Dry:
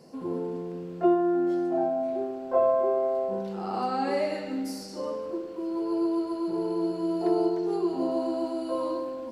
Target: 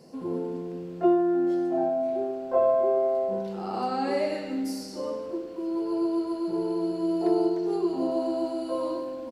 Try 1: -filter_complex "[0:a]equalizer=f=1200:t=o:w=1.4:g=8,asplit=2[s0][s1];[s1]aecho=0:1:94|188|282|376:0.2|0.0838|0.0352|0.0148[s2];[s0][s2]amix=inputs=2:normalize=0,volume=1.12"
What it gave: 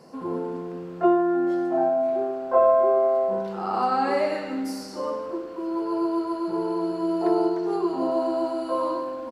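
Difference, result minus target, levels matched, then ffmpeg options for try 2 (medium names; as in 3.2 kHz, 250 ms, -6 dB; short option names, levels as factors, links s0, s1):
1 kHz band +3.5 dB
-filter_complex "[0:a]equalizer=f=1200:t=o:w=1.4:g=-2.5,asplit=2[s0][s1];[s1]aecho=0:1:94|188|282|376:0.2|0.0838|0.0352|0.0148[s2];[s0][s2]amix=inputs=2:normalize=0,volume=1.12"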